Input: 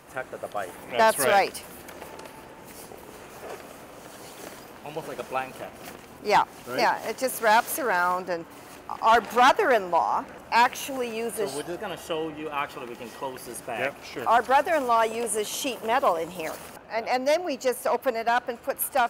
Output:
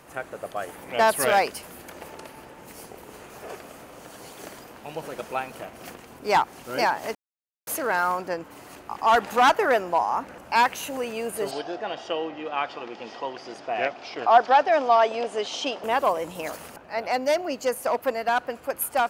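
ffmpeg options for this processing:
-filter_complex "[0:a]asettb=1/sr,asplit=3[a][b][c];[a]atrim=end=11.514[d];[b]atrim=start=11.51:end=15.84,asetpts=PTS-STARTPTS,afade=t=in:d=0.004:c=qsin,afade=t=out:st=4.326:d=0.004:c=qsin,highpass=150,equalizer=f=170:t=q:w=4:g=-8,equalizer=f=720:t=q:w=4:g=7,equalizer=f=3.4k:t=q:w=4:g=4,equalizer=f=5.1k:t=q:w=4:g=5,lowpass=f=5.5k:w=0.5412,lowpass=f=5.5k:w=1.3066[e];[c]atrim=start=15.836[f];[d][e]acrossfade=d=0.004:c1=hsin:c2=qsin[g];[g][f]acrossfade=d=0.004:c1=qsin:c2=hsin,asplit=3[h][i][j];[h]atrim=end=7.15,asetpts=PTS-STARTPTS,afade=t=out:st=7.146:d=0.004:c=hsin[k];[i]atrim=start=7.15:end=7.67,asetpts=PTS-STARTPTS,volume=0[l];[j]atrim=start=7.67,asetpts=PTS-STARTPTS,afade=t=in:d=0.004:c=hsin[m];[k][l][m]concat=n=3:v=0:a=1"

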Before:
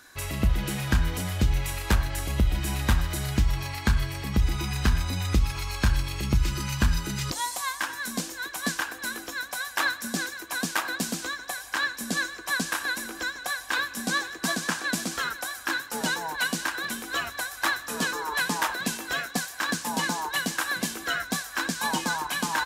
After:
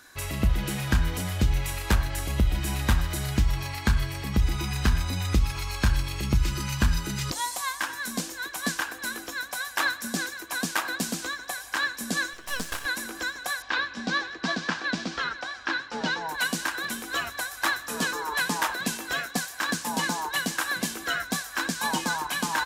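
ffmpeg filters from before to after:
-filter_complex "[0:a]asettb=1/sr,asplit=3[a][b][c];[a]atrim=end=12.334[d];[b]atrim=start=12.33:end=12.86,asetpts=PTS-STARTPTS,afade=t=in:d=0.004:c=qsin,afade=t=out:st=0.526:d=0.004:c=qsin,aeval=exprs='max(val(0),0)':c=same[e];[c]atrim=start=12.856[f];[d][e]acrossfade=d=0.004:c1=hsin:c2=qsin[g];[g][f]acrossfade=d=0.004:c1=qsin:c2=hsin,asettb=1/sr,asplit=3[h][i][j];[h]atrim=end=13.624[k];[i]atrim=start=13.62:end=16.29,asetpts=PTS-STARTPTS,afade=t=in:d=0.004:c=qsin,afade=t=out:st=2.666:d=0.004:c=qsin,lowpass=f=5.1k:w=0.5412,lowpass=f=5.1k:w=1.3066[l];[j]atrim=start=16.286[m];[k][l]acrossfade=d=0.004:c1=hsin:c2=qsin[n];[n][m]acrossfade=d=0.004:c1=qsin:c2=hsin"

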